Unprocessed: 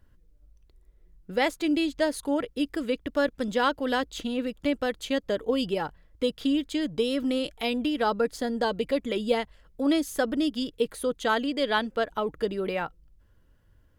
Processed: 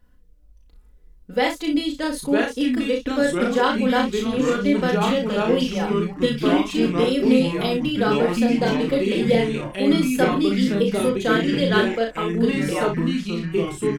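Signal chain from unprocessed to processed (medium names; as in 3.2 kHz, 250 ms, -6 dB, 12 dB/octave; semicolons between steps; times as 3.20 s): comb 4 ms, depth 75%; ever faster or slower copies 694 ms, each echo -3 st, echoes 3; on a send: early reflections 35 ms -3.5 dB, 62 ms -9.5 dB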